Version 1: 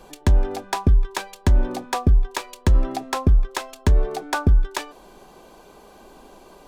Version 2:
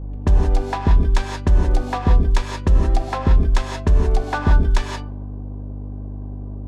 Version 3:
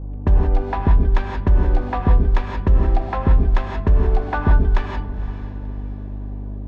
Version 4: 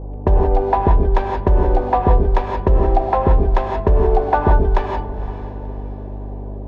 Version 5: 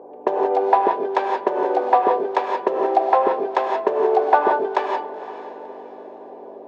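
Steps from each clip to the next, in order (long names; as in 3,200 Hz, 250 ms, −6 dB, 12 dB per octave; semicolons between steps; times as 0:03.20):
low-pass that shuts in the quiet parts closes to 550 Hz, open at −16 dBFS; hum with harmonics 50 Hz, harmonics 6, −30 dBFS −8 dB per octave; reverb whose tail is shaped and stops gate 200 ms rising, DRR 1.5 dB
low-pass filter 2,400 Hz 12 dB per octave; feedback delay with all-pass diffusion 509 ms, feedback 41%, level −14 dB
flat-topped bell 590 Hz +10 dB
high-pass filter 370 Hz 24 dB per octave; level +1.5 dB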